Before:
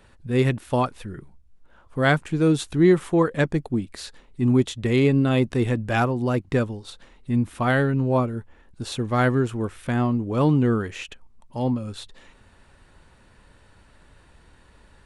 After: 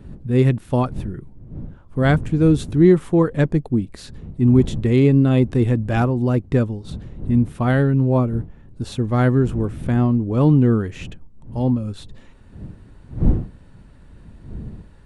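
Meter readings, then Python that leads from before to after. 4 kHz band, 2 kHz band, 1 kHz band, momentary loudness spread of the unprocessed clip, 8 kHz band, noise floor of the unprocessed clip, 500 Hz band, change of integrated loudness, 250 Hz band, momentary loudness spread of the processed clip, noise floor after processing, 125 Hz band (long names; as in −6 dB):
−3.5 dB, −2.5 dB, −1.0 dB, 18 LU, can't be measured, −55 dBFS, +2.5 dB, +4.0 dB, +4.5 dB, 21 LU, −46 dBFS, +6.5 dB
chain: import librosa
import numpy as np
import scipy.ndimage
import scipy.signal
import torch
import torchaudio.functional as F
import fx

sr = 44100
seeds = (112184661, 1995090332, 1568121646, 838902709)

y = fx.dmg_wind(x, sr, seeds[0], corner_hz=170.0, level_db=-37.0)
y = fx.low_shelf(y, sr, hz=490.0, db=10.5)
y = y * librosa.db_to_amplitude(-3.5)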